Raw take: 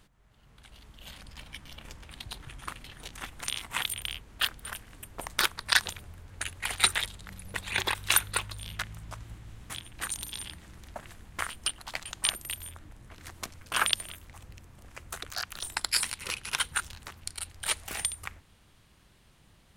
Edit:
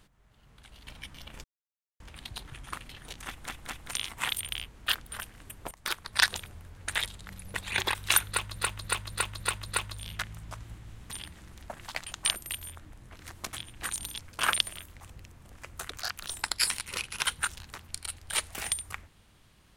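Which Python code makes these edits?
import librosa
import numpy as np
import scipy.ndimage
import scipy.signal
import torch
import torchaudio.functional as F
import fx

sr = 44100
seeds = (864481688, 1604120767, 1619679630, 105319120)

y = fx.edit(x, sr, fx.cut(start_s=0.87, length_s=0.51),
    fx.insert_silence(at_s=1.95, length_s=0.56),
    fx.stutter(start_s=3.23, slice_s=0.21, count=3),
    fx.fade_in_from(start_s=5.24, length_s=0.51, floor_db=-16.5),
    fx.cut(start_s=6.44, length_s=0.47),
    fx.repeat(start_s=8.28, length_s=0.28, count=6),
    fx.move(start_s=9.71, length_s=0.66, to_s=13.52),
    fx.cut(start_s=11.14, length_s=0.73), tone=tone)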